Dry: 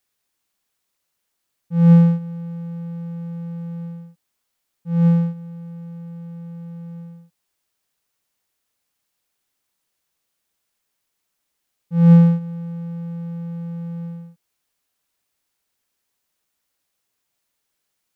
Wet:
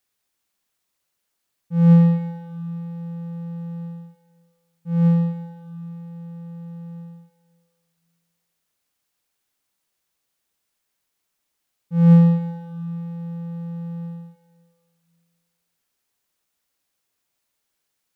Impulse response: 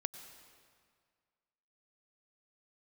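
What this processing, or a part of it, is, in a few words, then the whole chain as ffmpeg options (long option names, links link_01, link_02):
stairwell: -filter_complex "[1:a]atrim=start_sample=2205[link_01];[0:a][link_01]afir=irnorm=-1:irlink=0,asettb=1/sr,asplit=3[link_02][link_03][link_04];[link_02]atrim=end=2.004[link_05];[link_03]atrim=start=2:end=2.59,asetpts=PTS-STARTPTS,afade=type=in:duration=0.004:curve=qsin,afade=type=out:start_time=0.586:duration=0.004:curve=qsin,equalizer=frequency=2100:width_type=o:width=0.22:gain=9[link_06];[link_04]atrim=start=2.586[link_07];[link_05][link_06]acrossfade=duration=0.004:curve1=hsin:curve2=qsin[link_08];[link_08][link_07]acrossfade=duration=0.004:curve1=qsin:curve2=hsin"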